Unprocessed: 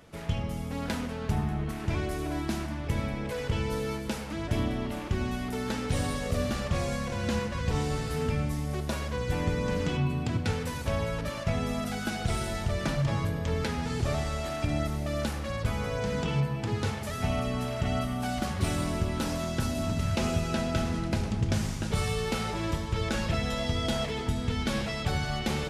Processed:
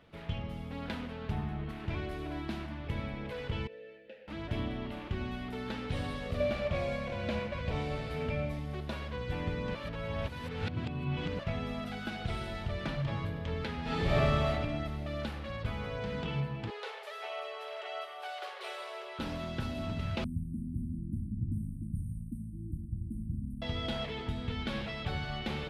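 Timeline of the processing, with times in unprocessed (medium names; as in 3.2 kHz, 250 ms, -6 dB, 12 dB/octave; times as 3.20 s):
3.67–4.28 s: vowel filter e
6.40–8.59 s: small resonant body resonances 610/2300 Hz, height 14 dB
9.75–11.39 s: reverse
13.82–14.48 s: reverb throw, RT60 1.2 s, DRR -8 dB
16.70–19.19 s: steep high-pass 390 Hz 96 dB/octave
20.24–23.62 s: brick-wall FIR band-stop 320–8200 Hz
whole clip: resonant high shelf 4.9 kHz -11 dB, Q 1.5; trim -6.5 dB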